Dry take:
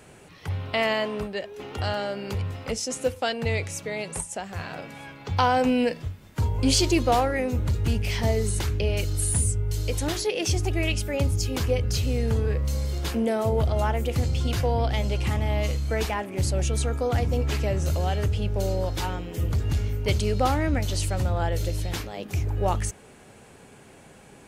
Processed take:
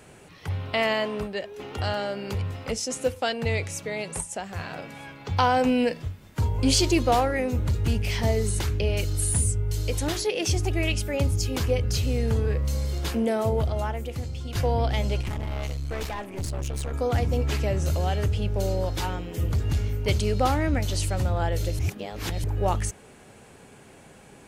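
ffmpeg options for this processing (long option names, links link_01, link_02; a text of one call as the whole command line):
ffmpeg -i in.wav -filter_complex "[0:a]asettb=1/sr,asplit=3[link_01][link_02][link_03];[link_01]atrim=end=15.214[link_04];[link_02]atrim=start=15.21:end=16.94,asetpts=PTS-STARTPTS,afade=type=in:duration=0.004:curve=qsin,afade=type=out:start_time=1.726:duration=0.004:curve=qsin,aeval=exprs='(tanh(22.4*val(0)+0.55)-tanh(0.55))/22.4':channel_layout=same[link_05];[link_03]atrim=start=16.936[link_06];[link_04][link_05]acrossfade=duration=0.004:curve1=hsin:curve2=qsin[link_07];[link_07][link_06]acrossfade=duration=0.004:curve1=qsin:curve2=hsin,asplit=4[link_08][link_09][link_10][link_11];[link_08]atrim=end=14.55,asetpts=PTS-STARTPTS,afade=type=out:start_time=13.45:duration=1.1:curve=qua:silence=0.354813[link_12];[link_09]atrim=start=14.55:end=21.792,asetpts=PTS-STARTPTS,afade=type=in:duration=0.004:curve=hsin:silence=0.354813[link_13];[link_10]atrim=start=21.788:end=22.442,asetpts=PTS-STARTPTS,areverse[link_14];[link_11]atrim=start=22.438[link_15];[link_12][link_13]concat=n=2:v=0:a=1[link_16];[link_16][link_14]acrossfade=duration=0.004:curve1=hsin:curve2=hsin[link_17];[link_17][link_15]acrossfade=duration=0.004:curve1=hsin:curve2=hsin" out.wav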